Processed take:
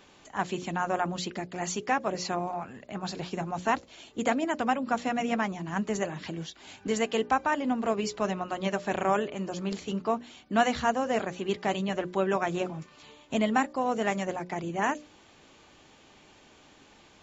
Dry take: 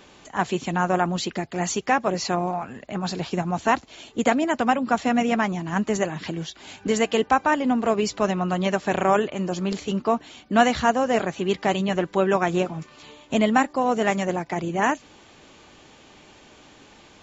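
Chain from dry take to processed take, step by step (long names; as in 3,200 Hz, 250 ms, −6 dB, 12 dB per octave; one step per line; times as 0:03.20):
mains-hum notches 60/120/180/240/300/360/420/480/540/600 Hz
level −6 dB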